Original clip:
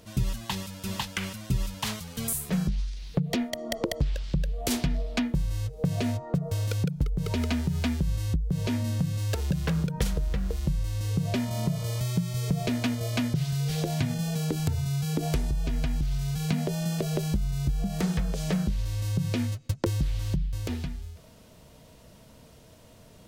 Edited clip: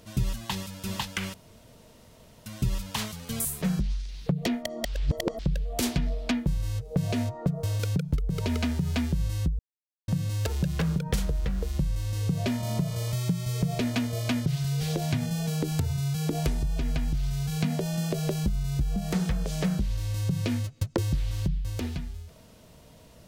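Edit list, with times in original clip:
1.34 insert room tone 1.12 s
3.73–4.27 reverse
8.47–8.96 mute

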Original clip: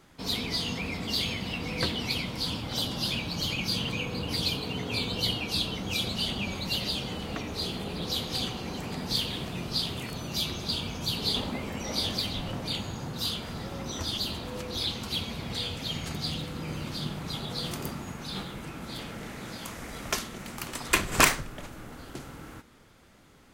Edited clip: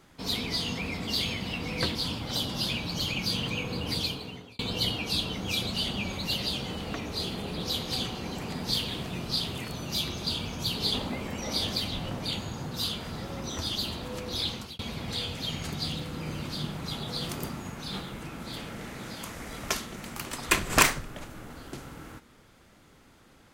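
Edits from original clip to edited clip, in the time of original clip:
1.95–2.37 cut
4.34–5.01 fade out
14.96–15.21 fade out

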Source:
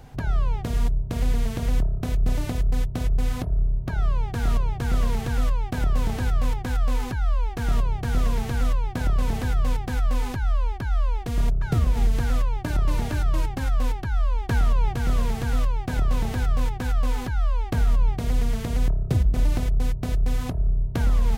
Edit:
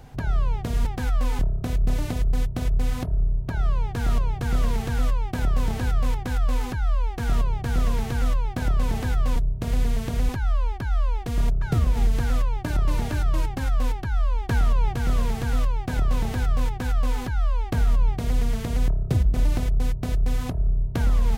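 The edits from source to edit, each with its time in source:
0.85–1.78 swap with 9.75–10.29

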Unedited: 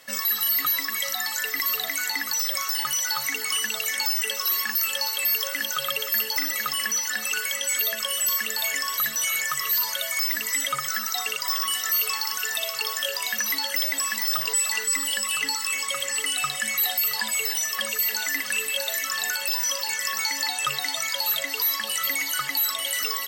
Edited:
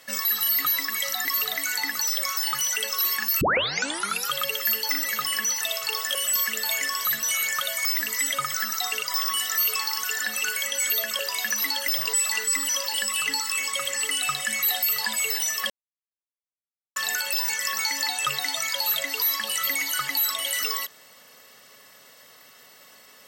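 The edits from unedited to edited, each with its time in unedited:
1.25–1.57 cut
3.08–4.23 cut
4.88 tape start 0.91 s
7.08–8.08 swap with 12.53–13.07
9.53–9.94 cut
13.86–14.38 cut
17.85–19.11 mute
19.64–19.89 move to 15.09

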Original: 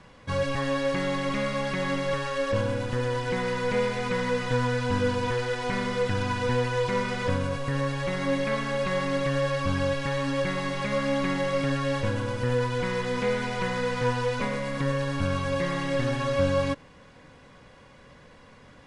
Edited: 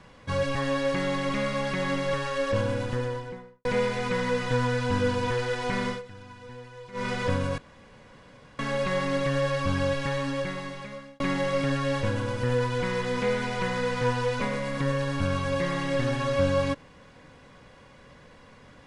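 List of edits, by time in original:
2.79–3.65 studio fade out
5.89–7.06 dip -18 dB, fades 0.13 s
7.58–8.59 room tone
10.06–11.2 fade out

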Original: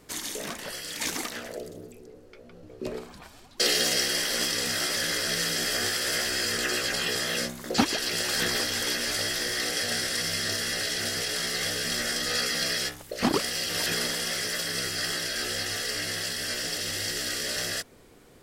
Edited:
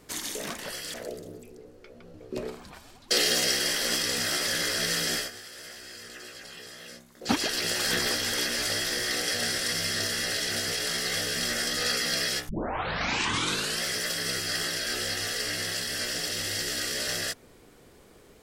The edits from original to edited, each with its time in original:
0.94–1.43 cut
5.64–7.86 dip -16 dB, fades 0.16 s
12.98 tape start 1.33 s

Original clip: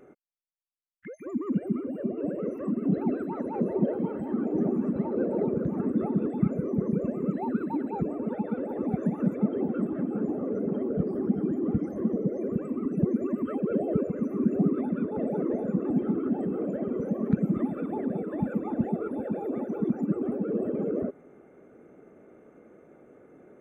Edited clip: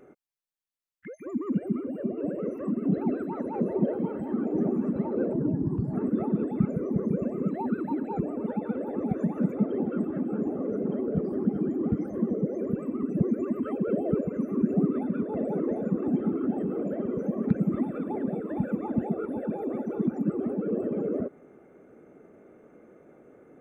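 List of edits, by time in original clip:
5.33–5.76 speed 71%

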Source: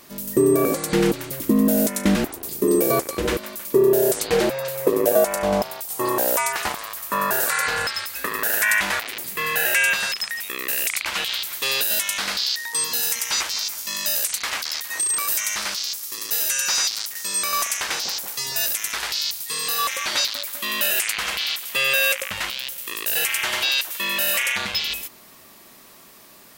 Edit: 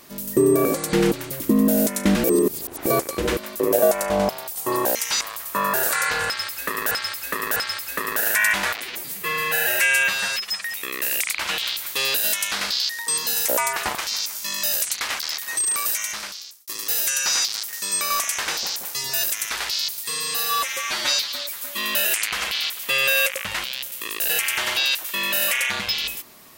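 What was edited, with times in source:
2.24–2.86 reverse
3.6–4.93 cut
6.28–6.78 swap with 13.15–13.41
7.83–8.48 loop, 3 plays
9.09–10.3 stretch 1.5×
15.25–16.1 fade out
19.51–20.64 stretch 1.5×

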